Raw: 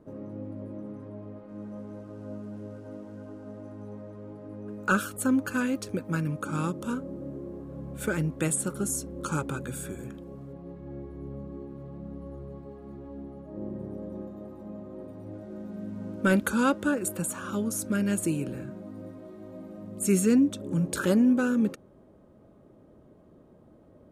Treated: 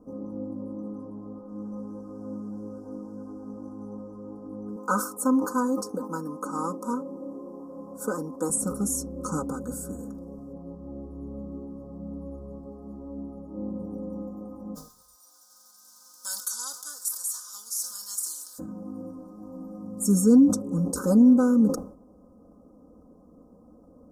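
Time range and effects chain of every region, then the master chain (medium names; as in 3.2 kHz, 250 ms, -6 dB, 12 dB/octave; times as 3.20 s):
4.76–8.50 s: high-pass 280 Hz + peaking EQ 1 kHz +7.5 dB 0.41 oct
14.74–18.58 s: formants flattened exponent 0.6 + resonant high-pass 3 kHz, resonance Q 9.9 + frequency-shifting echo 133 ms, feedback 44%, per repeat -50 Hz, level -20.5 dB
whole clip: Chebyshev band-stop 1.2–5.3 kHz, order 3; comb 4 ms, depth 92%; decay stretcher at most 110 dB/s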